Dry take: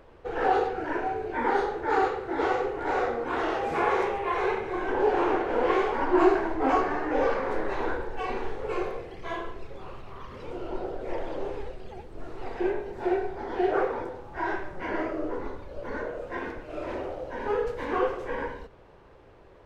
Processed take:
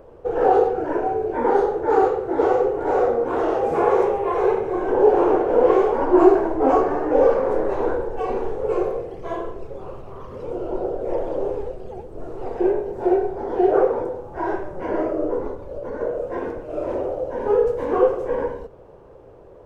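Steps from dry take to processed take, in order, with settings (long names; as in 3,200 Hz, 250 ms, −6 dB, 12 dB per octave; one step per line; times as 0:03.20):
0:15.52–0:16.01: downward compressor, threshold −33 dBFS, peak gain reduction 4.5 dB
octave-band graphic EQ 125/500/2,000/4,000 Hz +3/+8/−8/−8 dB
level +3.5 dB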